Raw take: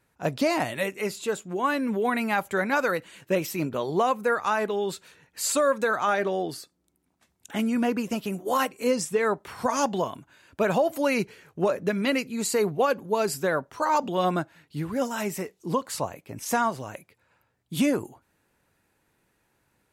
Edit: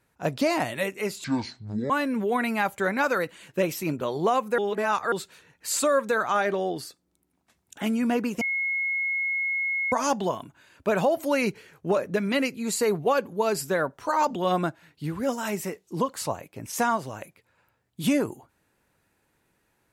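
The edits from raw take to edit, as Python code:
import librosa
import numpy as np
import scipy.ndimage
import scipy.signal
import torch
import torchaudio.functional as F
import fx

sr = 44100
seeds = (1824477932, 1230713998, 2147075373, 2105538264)

y = fx.edit(x, sr, fx.speed_span(start_s=1.24, length_s=0.39, speed=0.59),
    fx.reverse_span(start_s=4.31, length_s=0.54),
    fx.bleep(start_s=8.14, length_s=1.51, hz=2170.0, db=-24.0), tone=tone)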